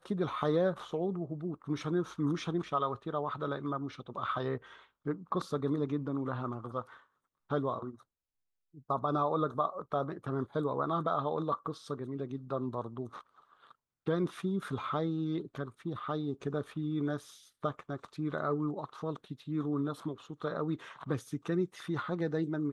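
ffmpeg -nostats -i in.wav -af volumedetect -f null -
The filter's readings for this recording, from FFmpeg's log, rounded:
mean_volume: -35.2 dB
max_volume: -16.1 dB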